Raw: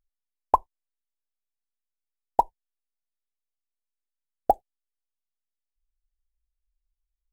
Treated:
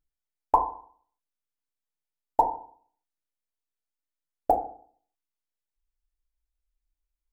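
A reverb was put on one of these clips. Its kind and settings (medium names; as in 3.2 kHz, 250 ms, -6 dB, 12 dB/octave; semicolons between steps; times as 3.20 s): FDN reverb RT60 0.51 s, low-frequency decay 1.1×, high-frequency decay 0.3×, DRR 1.5 dB; trim -3 dB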